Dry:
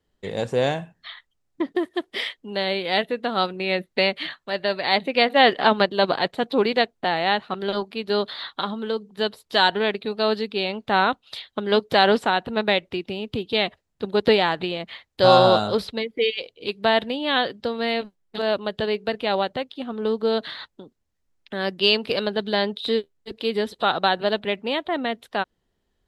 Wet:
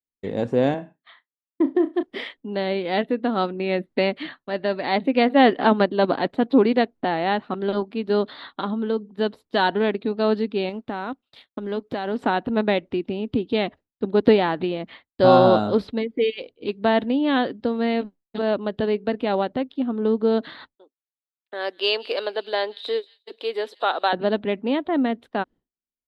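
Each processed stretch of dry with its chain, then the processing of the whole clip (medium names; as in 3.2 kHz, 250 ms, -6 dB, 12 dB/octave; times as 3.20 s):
0.74–2.03 s: high-pass 210 Hz + treble shelf 2 kHz -5 dB + flutter echo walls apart 5.8 m, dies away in 0.2 s
10.69–12.19 s: companding laws mixed up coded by A + compression 2:1, threshold -32 dBFS
20.75–24.13 s: high-pass 450 Hz 24 dB/octave + treble shelf 4 kHz +8 dB + feedback echo behind a high-pass 179 ms, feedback 50%, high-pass 2.9 kHz, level -18 dB
whole clip: low-pass 1.5 kHz 6 dB/octave; expander -42 dBFS; peaking EQ 270 Hz +10 dB 0.68 oct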